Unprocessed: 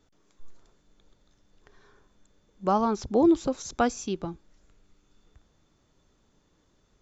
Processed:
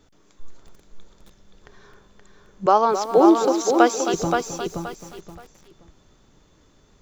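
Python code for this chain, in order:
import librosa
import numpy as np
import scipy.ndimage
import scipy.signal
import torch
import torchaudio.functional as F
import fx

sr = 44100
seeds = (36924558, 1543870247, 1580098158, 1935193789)

p1 = fx.highpass(x, sr, hz=340.0, slope=24, at=(2.66, 4.14))
p2 = p1 + fx.echo_feedback(p1, sr, ms=525, feedback_pct=25, wet_db=-5.0, dry=0)
p3 = fx.echo_crushed(p2, sr, ms=265, feedback_pct=35, bits=8, wet_db=-10.5)
y = F.gain(torch.from_numpy(p3), 8.5).numpy()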